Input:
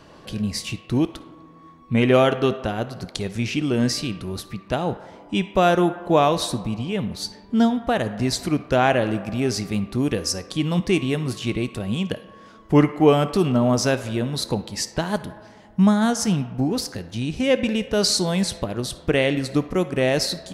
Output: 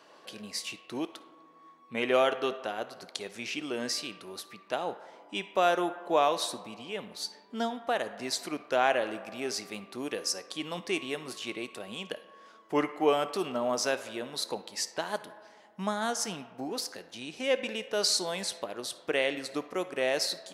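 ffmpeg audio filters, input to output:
-af "highpass=460,volume=-6dB"

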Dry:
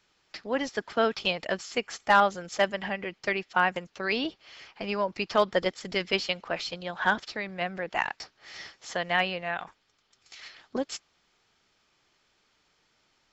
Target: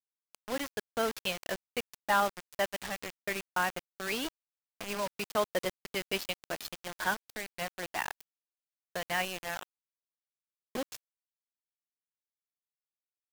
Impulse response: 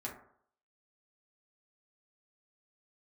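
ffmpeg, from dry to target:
-af "acrusher=bits=4:mix=0:aa=0.000001,volume=-6.5dB"

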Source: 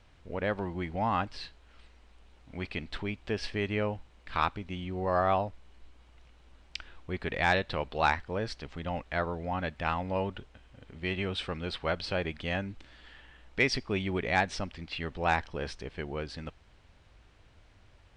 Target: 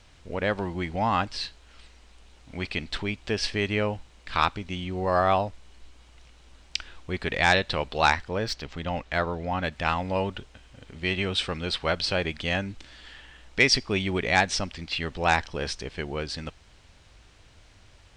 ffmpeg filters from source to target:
-filter_complex "[0:a]equalizer=f=7.1k:t=o:w=2:g=9.5,asettb=1/sr,asplit=3[a][b][c];[a]atrim=end=8.294[d];[b]atrim=start=8.29:end=9.72,asetpts=PTS-STARTPTS,afade=t=in:d=0.004:c=qsin,afade=t=out:st=1.426:d=0.004:c=qsin,adynamicsmooth=sensitivity=6:basefreq=7.7k[e];[c]atrim=start=9.716[f];[d][e]acrossfade=d=0.004:c1=hsin:c2=qsin[g];[g][f]acrossfade=d=0.004:c1=qsin:c2=hsin,volume=4dB"

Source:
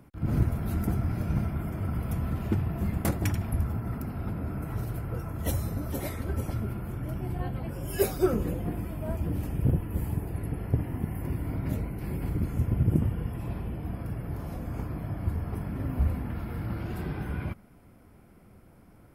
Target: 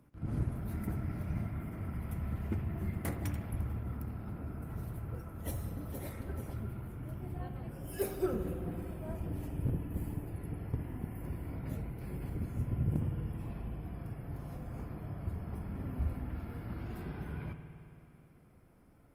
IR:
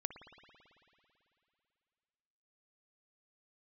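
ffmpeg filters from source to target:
-filter_complex "[0:a]asettb=1/sr,asplit=3[a][b][c];[a]atrim=end=0.644[d];[b]atrim=start=0.64:end=3.23,asetpts=PTS-STARTPTS,afade=t=in:d=0.004:c=qsin,afade=t=out:st=2.586:d=0.004:c=qsin,adynamicequalizer=threshold=0.001:dfrequency=2000:dqfactor=3.5:tfrequency=2000:tqfactor=3.5:attack=5:release=100:ratio=0.375:range=3:mode=boostabove:tftype=bell[e];[c]atrim=start=3.226[f];[d][e]acrossfade=d=0.004:c1=hsin:c2=qsin[g];[g][f]acrossfade=d=0.004:c1=qsin:c2=hsin,asoftclip=type=hard:threshold=-13.5dB[h];[1:a]atrim=start_sample=2205[i];[h][i]afir=irnorm=-1:irlink=0,volume=-6.5dB" -ar 48000 -c:a libopus -b:a 32k

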